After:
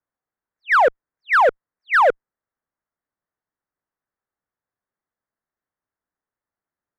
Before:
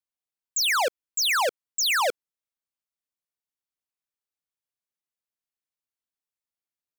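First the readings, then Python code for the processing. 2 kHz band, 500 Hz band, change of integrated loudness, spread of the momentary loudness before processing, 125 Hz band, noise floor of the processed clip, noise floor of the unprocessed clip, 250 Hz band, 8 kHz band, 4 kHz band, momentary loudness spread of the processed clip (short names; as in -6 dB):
+7.5 dB, +10.0 dB, +6.5 dB, 6 LU, n/a, under -85 dBFS, under -85 dBFS, +10.0 dB, under -20 dB, -13.5 dB, 4 LU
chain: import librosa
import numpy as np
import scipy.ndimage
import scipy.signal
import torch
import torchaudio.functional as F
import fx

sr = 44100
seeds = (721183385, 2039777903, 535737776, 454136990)

p1 = scipy.signal.sosfilt(scipy.signal.butter(8, 1900.0, 'lowpass', fs=sr, output='sos'), x)
p2 = fx.clip_asym(p1, sr, top_db=-27.0, bottom_db=-22.0)
p3 = p1 + (p2 * librosa.db_to_amplitude(-3.0))
y = p3 * librosa.db_to_amplitude(6.5)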